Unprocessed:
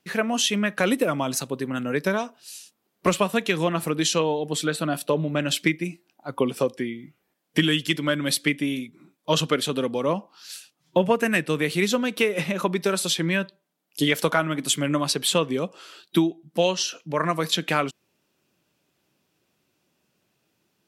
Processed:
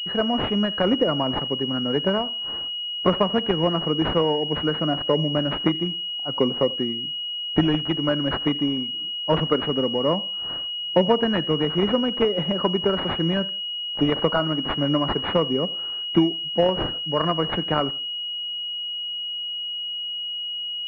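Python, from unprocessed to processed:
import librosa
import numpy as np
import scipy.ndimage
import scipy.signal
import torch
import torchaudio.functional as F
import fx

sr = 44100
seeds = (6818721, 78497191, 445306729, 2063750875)

p1 = x + fx.echo_feedback(x, sr, ms=84, feedback_pct=33, wet_db=-22.0, dry=0)
p2 = fx.pwm(p1, sr, carrier_hz=2900.0)
y = p2 * librosa.db_to_amplitude(2.0)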